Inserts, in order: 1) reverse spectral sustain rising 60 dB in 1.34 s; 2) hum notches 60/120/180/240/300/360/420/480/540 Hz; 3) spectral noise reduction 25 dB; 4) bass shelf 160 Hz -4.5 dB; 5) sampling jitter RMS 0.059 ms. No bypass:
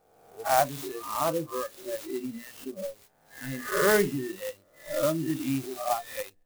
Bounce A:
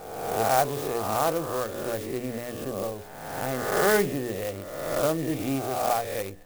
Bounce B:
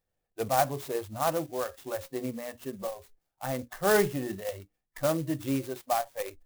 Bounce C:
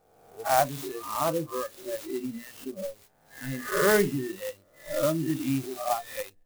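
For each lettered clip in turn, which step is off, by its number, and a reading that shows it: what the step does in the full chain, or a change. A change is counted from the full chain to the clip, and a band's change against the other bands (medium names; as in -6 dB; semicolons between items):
3, 125 Hz band +2.0 dB; 1, 125 Hz band +3.0 dB; 4, 125 Hz band +2.0 dB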